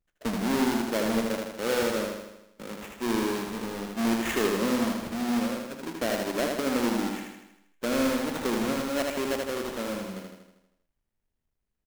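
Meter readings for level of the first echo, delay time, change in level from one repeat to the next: −3.5 dB, 79 ms, −5.0 dB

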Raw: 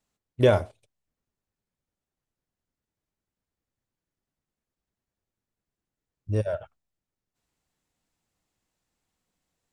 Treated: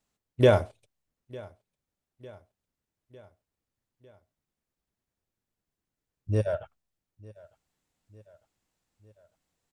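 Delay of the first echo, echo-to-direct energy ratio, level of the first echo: 902 ms, −21.0 dB, −22.5 dB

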